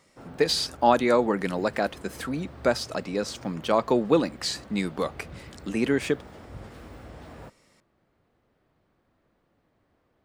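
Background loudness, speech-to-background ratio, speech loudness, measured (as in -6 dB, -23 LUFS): -46.0 LUFS, 20.0 dB, -26.0 LUFS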